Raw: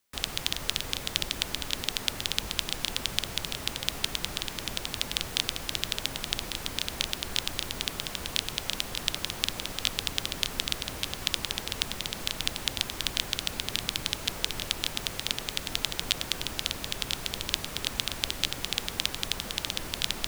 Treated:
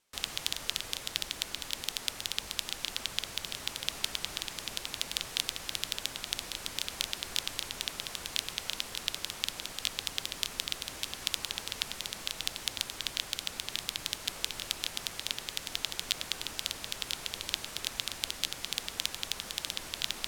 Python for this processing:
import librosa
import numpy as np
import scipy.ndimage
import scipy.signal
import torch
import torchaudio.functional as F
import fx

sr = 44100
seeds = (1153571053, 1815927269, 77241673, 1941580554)

y = fx.low_shelf(x, sr, hz=400.0, db=-6.5)
y = fx.rider(y, sr, range_db=10, speed_s=2.0)
y = fx.high_shelf(y, sr, hz=5100.0, db=6.0)
y = np.interp(np.arange(len(y)), np.arange(len(y))[::2], y[::2])
y = y * 10.0 ** (-5.5 / 20.0)